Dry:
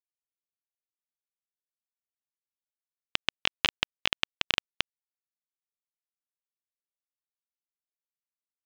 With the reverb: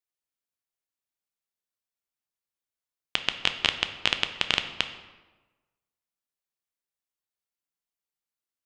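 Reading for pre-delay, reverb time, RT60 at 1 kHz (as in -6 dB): 7 ms, 1.2 s, 1.2 s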